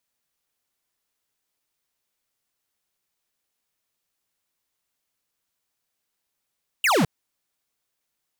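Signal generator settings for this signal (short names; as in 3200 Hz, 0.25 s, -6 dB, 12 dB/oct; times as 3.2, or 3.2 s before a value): laser zap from 3000 Hz, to 130 Hz, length 0.21 s square, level -19 dB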